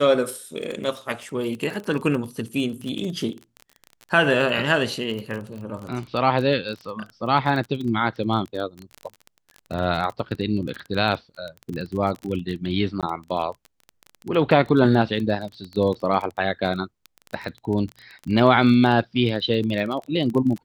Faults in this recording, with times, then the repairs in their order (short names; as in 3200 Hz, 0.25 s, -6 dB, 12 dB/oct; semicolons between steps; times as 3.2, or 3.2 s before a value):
crackle 21/s -28 dBFS
13.01–13.03 gap 17 ms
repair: de-click; interpolate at 13.01, 17 ms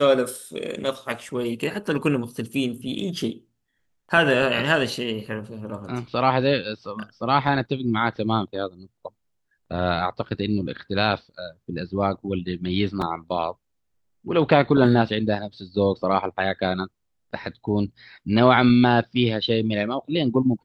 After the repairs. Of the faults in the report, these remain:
none